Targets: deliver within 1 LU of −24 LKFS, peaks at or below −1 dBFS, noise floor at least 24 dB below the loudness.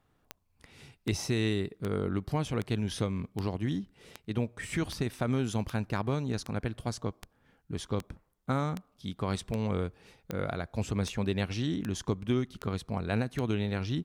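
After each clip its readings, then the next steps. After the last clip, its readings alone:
number of clicks 18; integrated loudness −33.0 LKFS; sample peak −17.0 dBFS; target loudness −24.0 LKFS
→ click removal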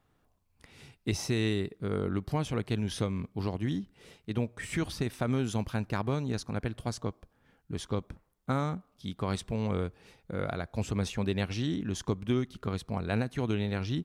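number of clicks 0; integrated loudness −33.0 LKFS; sample peak −17.0 dBFS; target loudness −24.0 LKFS
→ level +9 dB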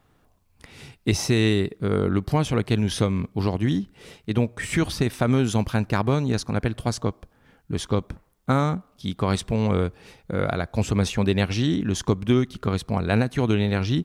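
integrated loudness −24.0 LKFS; sample peak −8.0 dBFS; background noise floor −63 dBFS

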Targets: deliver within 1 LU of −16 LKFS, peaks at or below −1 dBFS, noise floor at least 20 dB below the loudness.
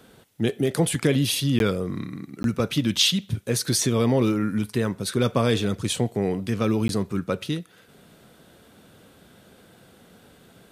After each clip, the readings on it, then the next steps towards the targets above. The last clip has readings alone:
number of dropouts 3; longest dropout 12 ms; integrated loudness −24.0 LKFS; sample peak −6.5 dBFS; target loudness −16.0 LKFS
→ repair the gap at 0:01.59/0:02.43/0:06.88, 12 ms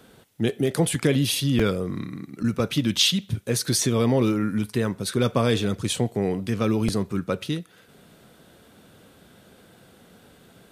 number of dropouts 0; integrated loudness −24.0 LKFS; sample peak −6.5 dBFS; target loudness −16.0 LKFS
→ level +8 dB
brickwall limiter −1 dBFS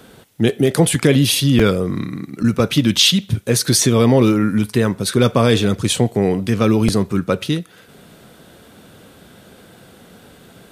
integrated loudness −16.0 LKFS; sample peak −1.0 dBFS; background noise floor −46 dBFS

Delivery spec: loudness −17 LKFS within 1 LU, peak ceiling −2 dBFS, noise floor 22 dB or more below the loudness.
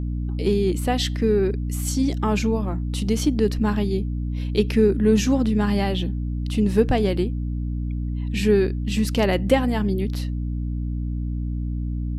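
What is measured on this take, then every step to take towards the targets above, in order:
mains hum 60 Hz; hum harmonics up to 300 Hz; level of the hum −23 dBFS; integrated loudness −23.0 LKFS; sample peak −4.0 dBFS; target loudness −17.0 LKFS
→ mains-hum notches 60/120/180/240/300 Hz
level +6 dB
brickwall limiter −2 dBFS

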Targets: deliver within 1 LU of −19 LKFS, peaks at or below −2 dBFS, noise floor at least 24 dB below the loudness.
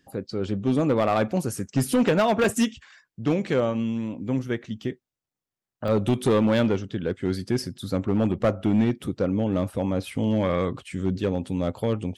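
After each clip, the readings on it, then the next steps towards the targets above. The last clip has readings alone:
share of clipped samples 1.7%; peaks flattened at −15.0 dBFS; number of dropouts 3; longest dropout 2.1 ms; integrated loudness −25.0 LKFS; sample peak −15.0 dBFS; target loudness −19.0 LKFS
→ clipped peaks rebuilt −15 dBFS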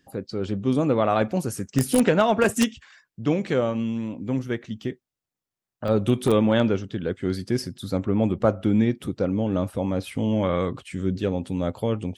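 share of clipped samples 0.0%; number of dropouts 3; longest dropout 2.1 ms
→ repair the gap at 0:02.44/0:05.88/0:10.09, 2.1 ms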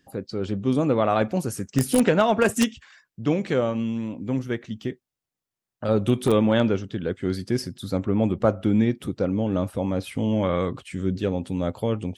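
number of dropouts 0; integrated loudness −24.5 LKFS; sample peak −6.0 dBFS; target loudness −19.0 LKFS
→ level +5.5 dB
brickwall limiter −2 dBFS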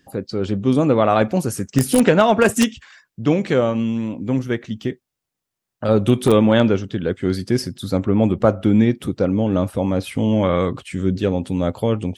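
integrated loudness −19.0 LKFS; sample peak −2.0 dBFS; background noise floor −83 dBFS

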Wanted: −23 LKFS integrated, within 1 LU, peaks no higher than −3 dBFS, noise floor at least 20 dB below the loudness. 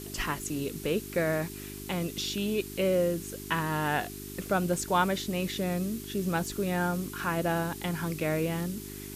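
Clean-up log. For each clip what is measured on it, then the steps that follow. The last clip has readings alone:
mains hum 50 Hz; hum harmonics up to 400 Hz; level of the hum −41 dBFS; background noise floor −41 dBFS; target noise floor −51 dBFS; integrated loudness −30.5 LKFS; sample peak −12.5 dBFS; target loudness −23.0 LKFS
→ hum removal 50 Hz, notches 8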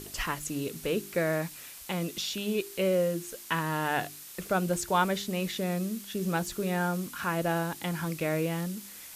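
mains hum none found; background noise floor −46 dBFS; target noise floor −51 dBFS
→ broadband denoise 6 dB, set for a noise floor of −46 dBFS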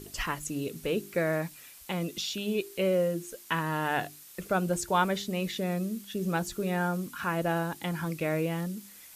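background noise floor −51 dBFS; integrated loudness −31.0 LKFS; sample peak −13.0 dBFS; target loudness −23.0 LKFS
→ level +8 dB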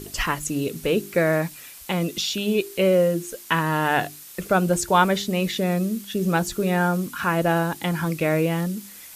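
integrated loudness −23.0 LKFS; sample peak −5.0 dBFS; background noise floor −43 dBFS

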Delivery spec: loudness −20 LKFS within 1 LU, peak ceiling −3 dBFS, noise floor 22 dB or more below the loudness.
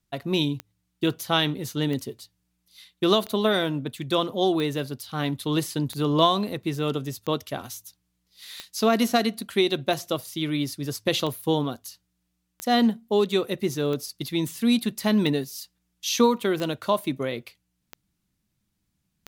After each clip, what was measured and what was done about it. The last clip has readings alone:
number of clicks 15; integrated loudness −25.5 LKFS; sample peak −6.0 dBFS; target loudness −20.0 LKFS
→ click removal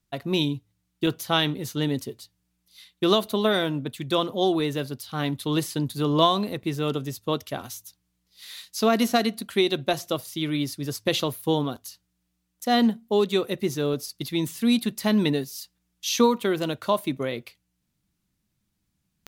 number of clicks 1; integrated loudness −25.5 LKFS; sample peak −6.0 dBFS; target loudness −20.0 LKFS
→ level +5.5 dB
brickwall limiter −3 dBFS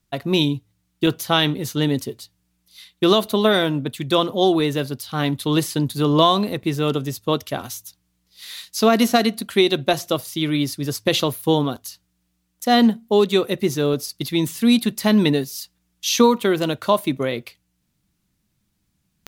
integrated loudness −20.0 LKFS; sample peak −3.0 dBFS; background noise floor −71 dBFS

